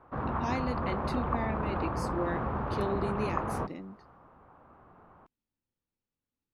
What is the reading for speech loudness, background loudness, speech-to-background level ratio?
-37.0 LUFS, -33.5 LUFS, -3.5 dB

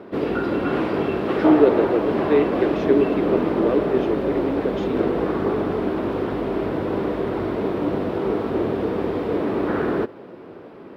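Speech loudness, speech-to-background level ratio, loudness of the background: -22.5 LUFS, 0.5 dB, -23.0 LUFS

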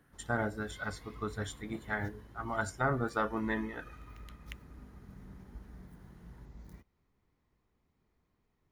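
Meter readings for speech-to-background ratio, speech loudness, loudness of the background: 17.0 dB, -36.0 LUFS, -53.0 LUFS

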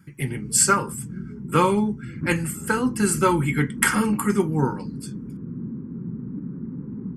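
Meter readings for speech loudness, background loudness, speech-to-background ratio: -22.0 LUFS, -34.0 LUFS, 12.0 dB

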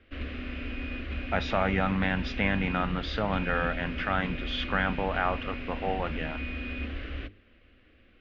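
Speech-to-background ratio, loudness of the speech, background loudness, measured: 6.5 dB, -30.0 LUFS, -36.5 LUFS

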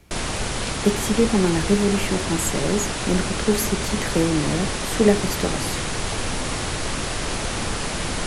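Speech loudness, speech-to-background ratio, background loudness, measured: -23.0 LUFS, 3.0 dB, -26.0 LUFS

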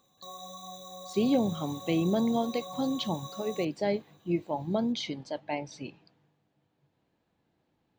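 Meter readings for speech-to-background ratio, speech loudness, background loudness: 12.5 dB, -31.0 LUFS, -43.5 LUFS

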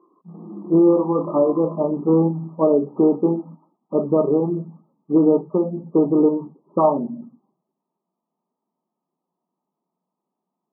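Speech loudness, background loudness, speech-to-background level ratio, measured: -19.5 LUFS, -35.5 LUFS, 16.0 dB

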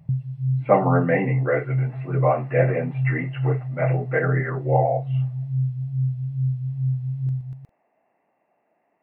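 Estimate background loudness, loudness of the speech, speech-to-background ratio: -26.0 LUFS, -24.0 LUFS, 2.0 dB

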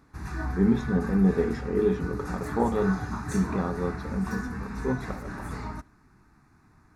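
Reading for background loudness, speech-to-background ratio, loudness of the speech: -35.5 LUFS, 7.5 dB, -28.0 LUFS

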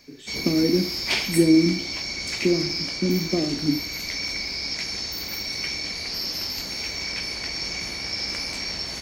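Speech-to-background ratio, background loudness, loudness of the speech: 3.5 dB, -27.0 LUFS, -23.5 LUFS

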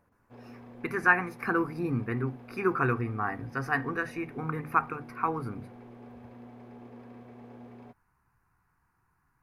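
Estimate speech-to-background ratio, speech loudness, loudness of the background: 18.5 dB, -30.5 LUFS, -49.0 LUFS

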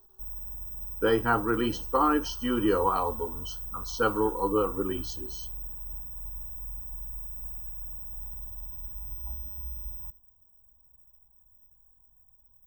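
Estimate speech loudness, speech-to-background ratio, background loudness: -27.5 LUFS, 8.5 dB, -36.0 LUFS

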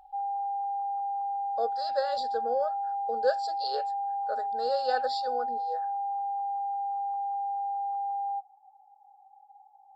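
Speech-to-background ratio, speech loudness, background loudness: -1.5 dB, -33.5 LUFS, -32.0 LUFS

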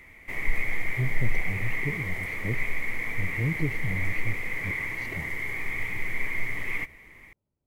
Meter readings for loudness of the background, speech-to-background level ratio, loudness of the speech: -31.0 LUFS, -4.0 dB, -35.0 LUFS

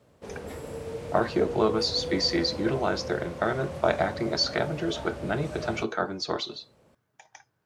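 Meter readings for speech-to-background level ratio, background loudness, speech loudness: 9.0 dB, -37.0 LUFS, -28.0 LUFS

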